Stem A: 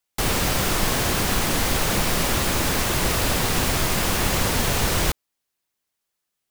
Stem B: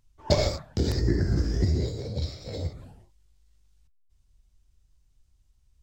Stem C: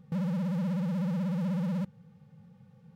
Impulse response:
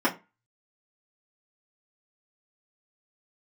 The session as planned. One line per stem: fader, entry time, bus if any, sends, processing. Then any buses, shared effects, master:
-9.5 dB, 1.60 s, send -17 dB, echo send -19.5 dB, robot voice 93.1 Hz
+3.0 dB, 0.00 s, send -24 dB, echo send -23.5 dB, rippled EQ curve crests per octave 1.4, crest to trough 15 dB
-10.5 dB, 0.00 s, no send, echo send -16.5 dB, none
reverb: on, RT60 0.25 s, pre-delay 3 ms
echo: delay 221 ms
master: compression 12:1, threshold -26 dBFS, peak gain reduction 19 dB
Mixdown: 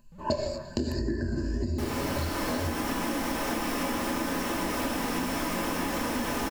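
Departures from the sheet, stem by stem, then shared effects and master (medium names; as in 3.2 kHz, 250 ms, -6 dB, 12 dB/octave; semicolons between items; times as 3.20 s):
stem A: missing robot voice 93.1 Hz; stem C -10.5 dB -> -20.0 dB; reverb return +10.0 dB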